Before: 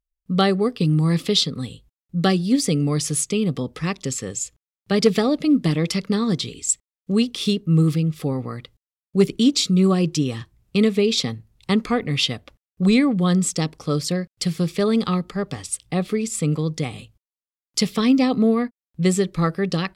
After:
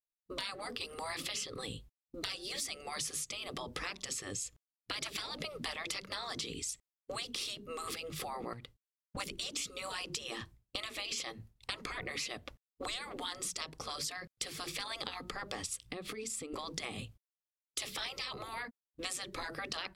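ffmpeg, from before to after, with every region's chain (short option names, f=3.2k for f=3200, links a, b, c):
-filter_complex "[0:a]asettb=1/sr,asplit=3[a][b][c];[a]atrim=end=8.534[d];[b]atrim=start=8.53:end=9.17,asetpts=PTS-STARTPTS,afade=t=in:d=0.004:c=qsin,afade=t=out:st=0.636:d=0.004:c=qsin,volume=26.5dB,asoftclip=hard,volume=-26.5dB,acompressor=threshold=-42dB:ratio=10:attack=3.2:release=140:knee=1:detection=peak[e];[c]atrim=start=9.166[f];[d][e]acrossfade=d=0.004:c1=hsin:c2=qsin[g];[g][f]acrossfade=d=0.004:c1=qsin:c2=hsin,asettb=1/sr,asplit=3[h][i][j];[h]atrim=end=15.804[k];[i]atrim=start=15.8:end=16.54,asetpts=PTS-STARTPTS,afade=t=in:d=0.004:c=qsin,afade=t=out:st=0.736:d=0.004:c=qsin,equalizer=f=670:t=o:w=0.54:g=-6.5,bandreject=f=830:w=24,acompressor=threshold=-34dB:ratio=5:attack=3.2:release=140:knee=1:detection=peak[l];[j]atrim=start=16.536[m];[k][l]acrossfade=d=0.004:c1=hsin:c2=qsin[n];[n][m]acrossfade=d=0.004:c1=qsin:c2=hsin,afftfilt=real='re*lt(hypot(re,im),0.126)':imag='im*lt(hypot(re,im),0.126)':win_size=1024:overlap=0.75,agate=range=-33dB:threshold=-46dB:ratio=3:detection=peak,acompressor=threshold=-41dB:ratio=4,volume=3dB"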